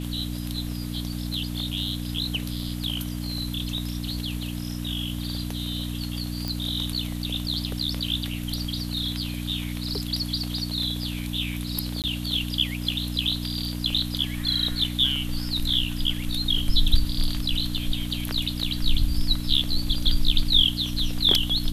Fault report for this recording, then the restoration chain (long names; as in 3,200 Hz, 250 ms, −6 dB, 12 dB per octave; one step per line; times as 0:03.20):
mains hum 60 Hz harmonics 5 −31 dBFS
0:06.48: click
0:12.02–0:12.04: drop-out 18 ms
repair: click removal
hum removal 60 Hz, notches 5
repair the gap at 0:12.02, 18 ms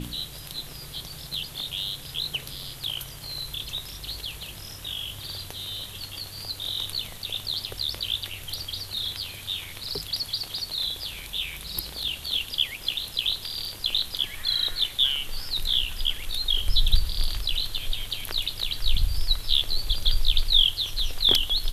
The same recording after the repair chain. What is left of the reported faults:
none of them is left